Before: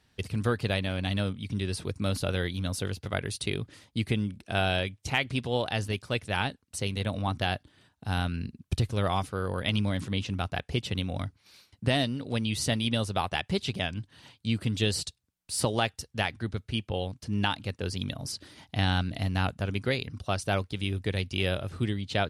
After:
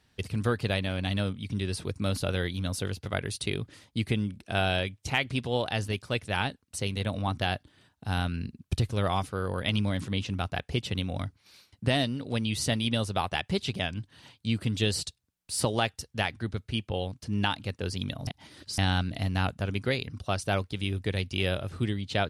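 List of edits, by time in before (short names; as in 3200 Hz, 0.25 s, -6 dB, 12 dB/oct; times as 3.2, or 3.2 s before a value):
18.27–18.78 reverse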